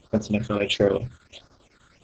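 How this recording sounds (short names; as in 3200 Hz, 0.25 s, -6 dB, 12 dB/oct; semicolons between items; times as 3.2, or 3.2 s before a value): a quantiser's noise floor 10-bit, dither none; phasing stages 8, 1.5 Hz, lowest notch 720–2800 Hz; chopped level 10 Hz, depth 60%, duty 80%; Opus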